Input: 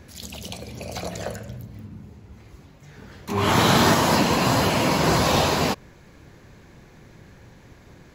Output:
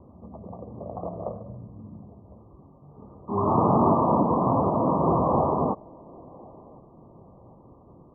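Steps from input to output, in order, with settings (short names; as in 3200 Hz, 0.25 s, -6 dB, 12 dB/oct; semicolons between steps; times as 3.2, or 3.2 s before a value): Chebyshev low-pass 1200 Hz, order 8; low shelf 97 Hz -9 dB; on a send: band-limited delay 1.055 s, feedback 30%, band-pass 430 Hz, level -23.5 dB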